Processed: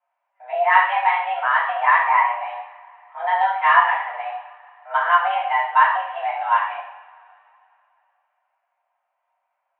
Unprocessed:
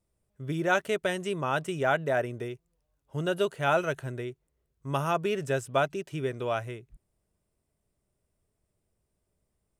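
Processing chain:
coupled-rooms reverb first 0.61 s, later 2.8 s, from −22 dB, DRR −7.5 dB
single-sideband voice off tune +360 Hz 290–2,300 Hz
level +2.5 dB

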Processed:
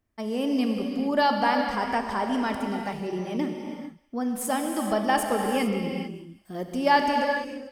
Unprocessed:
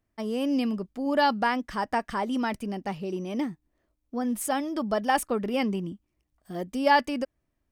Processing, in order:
on a send: feedback echo with a high-pass in the loop 194 ms, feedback 51%, high-pass 1,100 Hz, level −20 dB
on the sum: reverb whose tail is shaped and stops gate 470 ms flat, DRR 2.5 dB

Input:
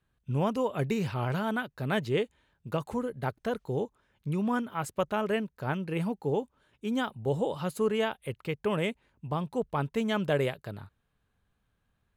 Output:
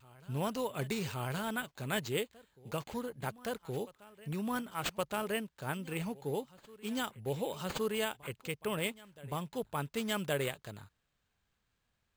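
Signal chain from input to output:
parametric band 11,000 Hz +15 dB 2.8 octaves
backwards echo 1,119 ms −21 dB
bad sample-rate conversion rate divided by 4×, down none, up hold
pitch vibrato 0.95 Hz 27 cents
level −7.5 dB

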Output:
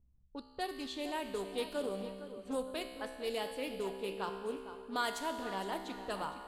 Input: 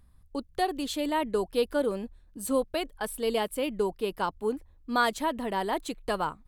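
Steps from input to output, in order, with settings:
low-pass that shuts in the quiet parts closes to 420 Hz, open at −25 dBFS
high-shelf EQ 3,200 Hz +8.5 dB
tuned comb filter 65 Hz, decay 1.9 s, harmonics all, mix 80%
on a send: tape delay 461 ms, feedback 45%, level −10.5 dB, low-pass 3,400 Hz
on the sum: highs frequency-modulated by the lows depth 0.17 ms
level +1 dB

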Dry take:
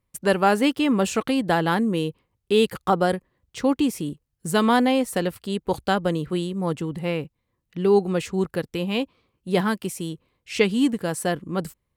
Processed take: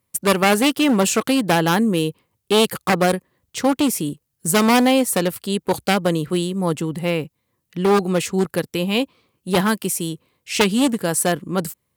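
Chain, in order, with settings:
wavefolder on the positive side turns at −18.5 dBFS
high-pass filter 99 Hz 12 dB per octave
high-shelf EQ 6,200 Hz +10.5 dB
level +4.5 dB

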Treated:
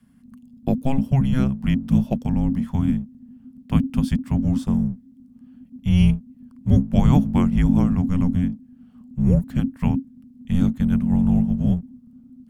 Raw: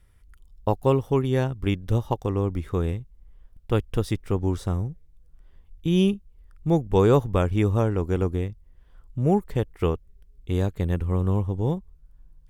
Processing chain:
sub-octave generator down 1 octave, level +4 dB
frequency shifter −270 Hz

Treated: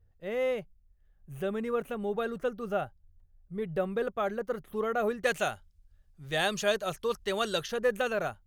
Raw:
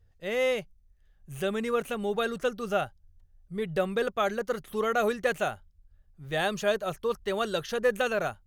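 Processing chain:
parametric band 6,000 Hz −11.5 dB 2.7 octaves, from 0:05.24 +6 dB, from 0:07.68 −2.5 dB
level −2 dB

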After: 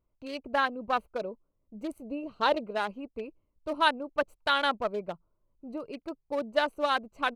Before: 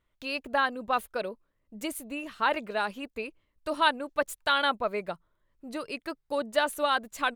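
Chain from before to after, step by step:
adaptive Wiener filter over 25 samples
0:02.02–0:02.64: octave-band graphic EQ 125/500/2,000/4,000 Hz +5/+6/−5/+7 dB

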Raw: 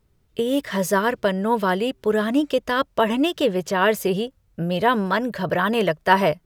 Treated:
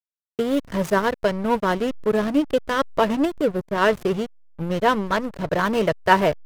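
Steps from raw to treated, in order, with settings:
0:03.25–0:03.78: parametric band 3,000 Hz −11 dB 1.5 octaves
slack as between gear wheels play −20 dBFS
level +1 dB

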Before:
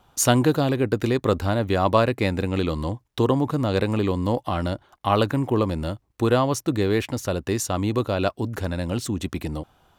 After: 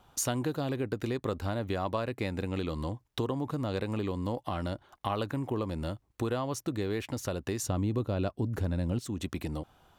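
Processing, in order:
0:07.63–0:08.99: low-shelf EQ 440 Hz +11 dB
downward compressor 3 to 1, threshold −29 dBFS, peak gain reduction 13.5 dB
level −2.5 dB

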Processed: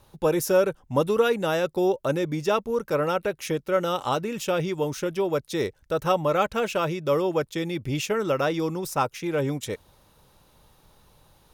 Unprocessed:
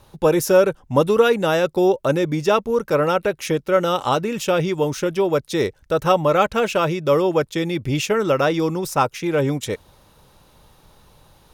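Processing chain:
high-shelf EQ 11,000 Hz +4.5 dB
level −6 dB

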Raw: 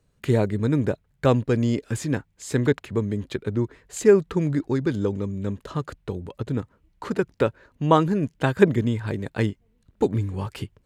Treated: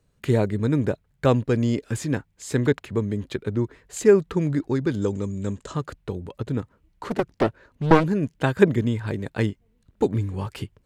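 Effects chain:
0:05.02–0:05.76: low-pass with resonance 7,600 Hz, resonance Q 4.7
0:07.08–0:08.04: highs frequency-modulated by the lows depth 0.96 ms

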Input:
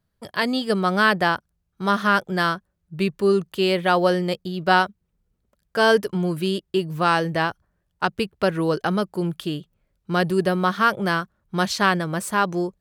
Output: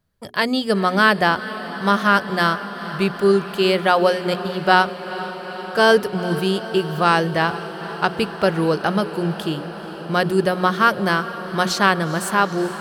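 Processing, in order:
mains-hum notches 60/120/180/240/300/360/420 Hz
feedback delay with all-pass diffusion 455 ms, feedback 79%, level −14.5 dB
level +3 dB

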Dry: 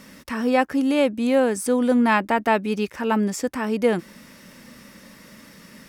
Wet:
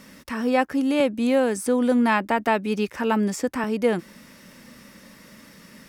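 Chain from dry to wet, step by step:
0:01.00–0:03.64: multiband upward and downward compressor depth 40%
level −1.5 dB

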